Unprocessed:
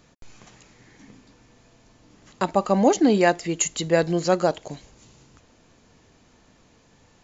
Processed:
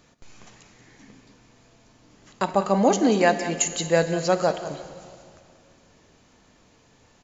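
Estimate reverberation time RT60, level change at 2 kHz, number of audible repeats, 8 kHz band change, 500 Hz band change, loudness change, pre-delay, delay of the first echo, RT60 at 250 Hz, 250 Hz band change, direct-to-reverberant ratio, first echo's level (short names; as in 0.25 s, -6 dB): 2.3 s, +0.5 dB, 1, n/a, -0.5 dB, -1.0 dB, 8 ms, 0.185 s, 2.3 s, -2.0 dB, 8.5 dB, -13.5 dB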